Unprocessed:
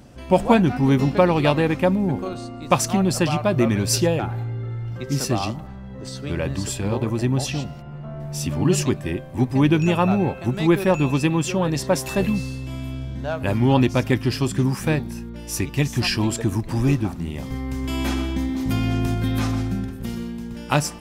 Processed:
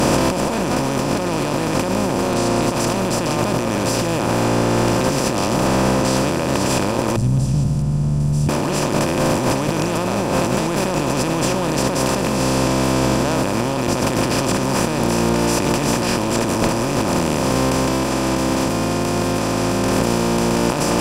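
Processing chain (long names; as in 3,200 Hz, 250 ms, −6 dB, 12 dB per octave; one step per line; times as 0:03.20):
compressor on every frequency bin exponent 0.2
0:07.16–0:08.49: drawn EQ curve 150 Hz 0 dB, 340 Hz −21 dB, 2,100 Hz −27 dB, 9,000 Hz −15 dB, 14,000 Hz −22 dB
compressor whose output falls as the input rises −15 dBFS, ratio −1
level −3.5 dB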